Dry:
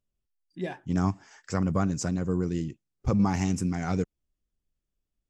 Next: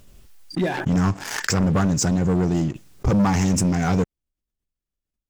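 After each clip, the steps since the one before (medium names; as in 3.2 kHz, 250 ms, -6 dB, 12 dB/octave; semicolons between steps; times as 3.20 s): waveshaping leveller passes 3; swell ahead of each attack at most 47 dB/s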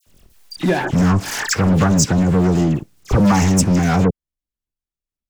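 waveshaping leveller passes 2; phase dispersion lows, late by 67 ms, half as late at 2.2 kHz; trim -1.5 dB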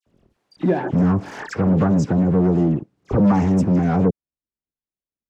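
band-pass filter 320 Hz, Q 0.57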